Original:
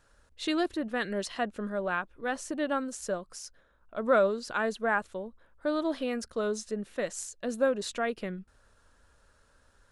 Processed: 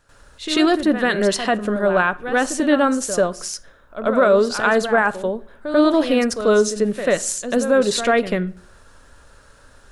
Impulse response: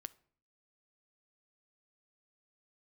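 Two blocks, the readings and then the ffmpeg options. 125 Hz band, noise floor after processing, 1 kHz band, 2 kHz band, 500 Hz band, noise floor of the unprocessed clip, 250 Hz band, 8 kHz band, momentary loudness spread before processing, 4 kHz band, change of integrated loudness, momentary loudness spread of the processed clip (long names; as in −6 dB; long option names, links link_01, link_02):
can't be measured, −50 dBFS, +12.0 dB, +12.5 dB, +13.0 dB, −65 dBFS, +14.0 dB, +15.0 dB, 11 LU, +14.0 dB, +13.0 dB, 10 LU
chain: -filter_complex "[0:a]alimiter=limit=-21.5dB:level=0:latency=1:release=21,asplit=2[link_01][link_02];[1:a]atrim=start_sample=2205,adelay=91[link_03];[link_02][link_03]afir=irnorm=-1:irlink=0,volume=15.5dB[link_04];[link_01][link_04]amix=inputs=2:normalize=0,volume=4dB"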